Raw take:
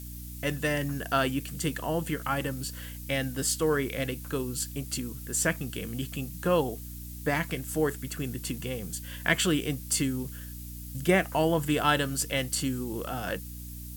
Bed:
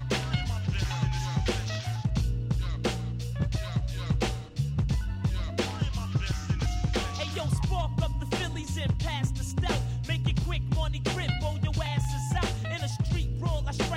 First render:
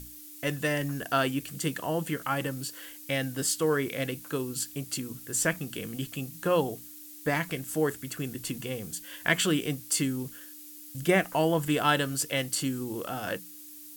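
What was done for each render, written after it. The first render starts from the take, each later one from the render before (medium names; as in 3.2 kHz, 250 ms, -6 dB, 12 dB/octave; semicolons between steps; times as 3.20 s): hum notches 60/120/180/240 Hz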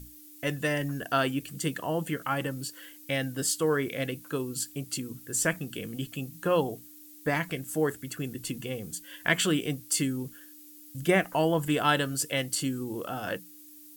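noise reduction 6 dB, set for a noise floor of -47 dBFS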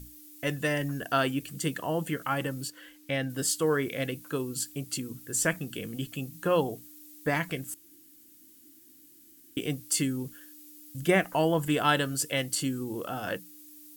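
2.70–3.30 s: treble shelf 5.6 kHz -10.5 dB; 7.74–9.57 s: room tone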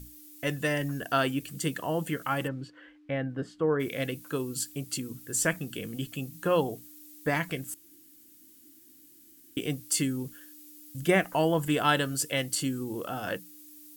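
2.47–3.79 s: low-pass 2.5 kHz -> 1.2 kHz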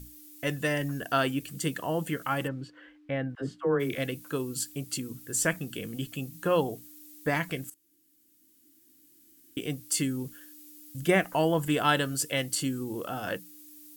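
3.35–3.98 s: phase dispersion lows, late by 66 ms, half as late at 440 Hz; 7.70–10.22 s: fade in, from -16 dB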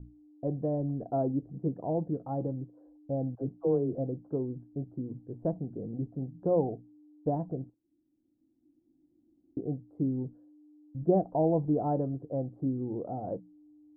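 elliptic low-pass 770 Hz, stop band 70 dB; peaking EQ 120 Hz +3.5 dB 0.26 oct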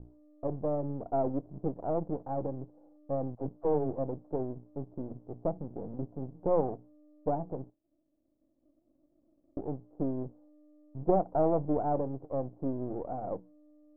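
partial rectifier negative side -12 dB; resonant low-pass 760 Hz, resonance Q 1.6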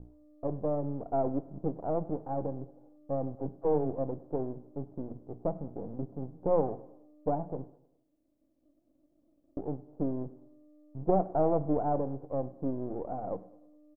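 feedback delay 102 ms, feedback 49%, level -21 dB; two-slope reverb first 0.58 s, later 1.5 s, from -24 dB, DRR 15.5 dB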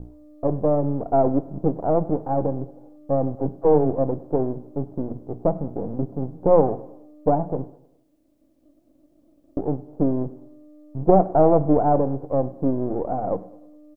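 trim +11 dB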